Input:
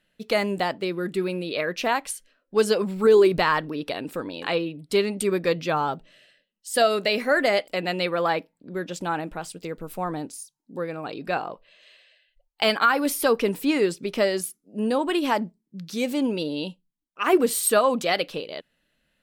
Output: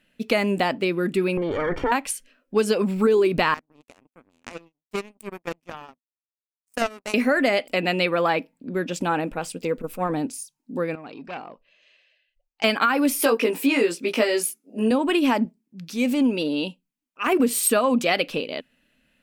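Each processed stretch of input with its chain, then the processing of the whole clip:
1.37–1.92 minimum comb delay 2.2 ms + transient shaper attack -2 dB, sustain +11 dB + polynomial smoothing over 41 samples
3.54–7.14 power-law curve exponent 3 + bell 3600 Hz -7.5 dB 1.5 oct
9.1–10.14 bell 500 Hz +7 dB 0.21 oct + core saturation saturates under 270 Hz
10.95–12.64 ladder low-pass 7100 Hz, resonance 55% + high shelf 4900 Hz -9.5 dB + core saturation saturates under 2200 Hz
13.2–14.91 HPF 330 Hz + doubler 18 ms -2 dB
15.45–17.4 low shelf 120 Hz -11.5 dB + transient shaper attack -8 dB, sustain -2 dB
whole clip: thirty-one-band EQ 250 Hz +10 dB, 2500 Hz +6 dB, 4000 Hz -3 dB; compressor 4:1, threshold -20 dBFS; gain +3.5 dB

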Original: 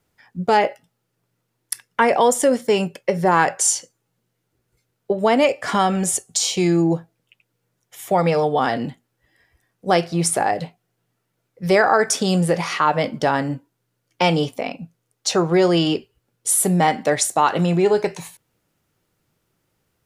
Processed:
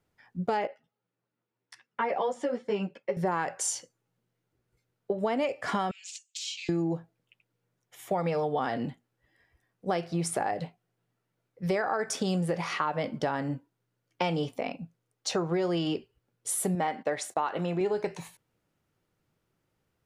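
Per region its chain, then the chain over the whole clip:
0.67–3.17 HPF 140 Hz 6 dB/oct + air absorption 130 m + ensemble effect
5.91–6.69 self-modulated delay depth 0.09 ms + elliptic band-pass 2500–7500 Hz, stop band 80 dB + comb 5.3 ms, depth 38%
16.75–17.81 gate -35 dBFS, range -17 dB + tone controls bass -8 dB, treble -6 dB
whole clip: high shelf 4500 Hz -7.5 dB; compressor, threshold -19 dBFS; gain -6 dB

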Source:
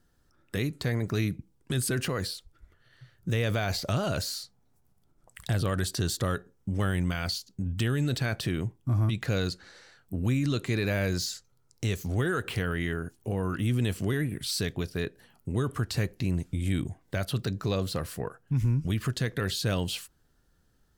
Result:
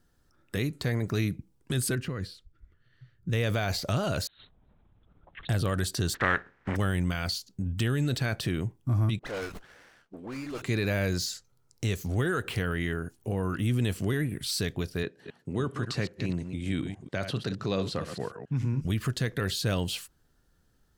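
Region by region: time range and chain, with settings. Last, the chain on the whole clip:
1.95–3.33 LPF 1500 Hz 6 dB/oct + bell 720 Hz -11 dB 1.6 oct
4.27–5.49 negative-ratio compressor -41 dBFS, ratio -0.5 + LPC vocoder at 8 kHz whisper
6.13–6.75 spectral contrast lowered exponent 0.43 + synth low-pass 1800 Hz, resonance Q 3.2
9.19–10.62 BPF 440–5700 Hz + dispersion highs, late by 54 ms, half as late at 1700 Hz + running maximum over 9 samples
15.03–18.81 reverse delay 0.137 s, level -8.5 dB + BPF 130–6400 Hz
whole clip: dry

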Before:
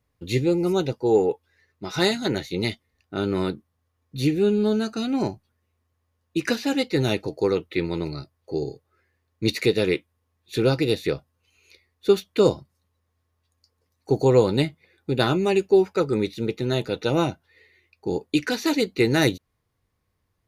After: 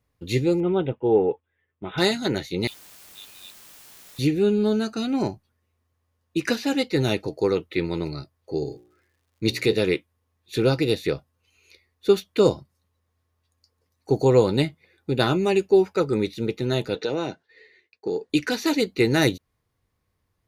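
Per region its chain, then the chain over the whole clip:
0.6–1.98 LPF 2200 Hz 6 dB/oct + gate -50 dBFS, range -8 dB + careless resampling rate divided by 6×, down none, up filtered
2.67–4.19 rippled Chebyshev high-pass 2400 Hz, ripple 9 dB + requantised 8-bit, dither triangular
8.63–9.74 de-hum 60.24 Hz, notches 18 + crackle 170/s -57 dBFS
16.95–18.3 expander -60 dBFS + speaker cabinet 180–8000 Hz, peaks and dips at 440 Hz +8 dB, 1200 Hz -3 dB, 1700 Hz +7 dB, 4200 Hz +5 dB + compressor 4:1, threshold -22 dBFS
whole clip: dry

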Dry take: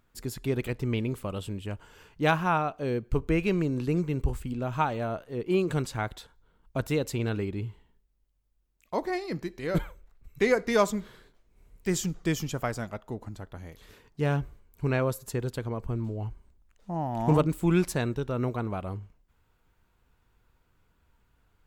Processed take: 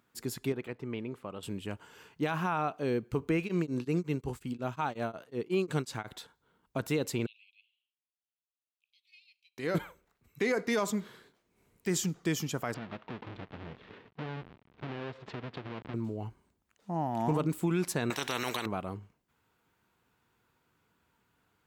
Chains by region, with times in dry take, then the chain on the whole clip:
0.52–1.43 LPF 1100 Hz 6 dB/oct + low shelf 440 Hz -9 dB
3.4–6.08 bell 5300 Hz +3 dB 1.4 oct + beating tremolo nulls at 5.5 Hz
7.26–9.58 steep high-pass 2500 Hz 96 dB/oct + air absorption 500 m
12.74–15.94 half-waves squared off + LPF 3400 Hz 24 dB/oct + compressor, threshold -36 dBFS
18.1–18.66 bell 680 Hz +7.5 dB 3 oct + spectral compressor 4:1
whole clip: HPF 150 Hz 12 dB/oct; bell 570 Hz -3 dB 0.44 oct; limiter -20.5 dBFS

